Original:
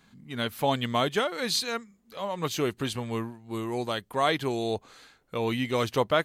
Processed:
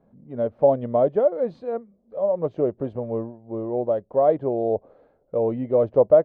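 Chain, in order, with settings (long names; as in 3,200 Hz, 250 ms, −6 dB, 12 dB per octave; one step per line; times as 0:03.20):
low-pass with resonance 580 Hz, resonance Q 4.9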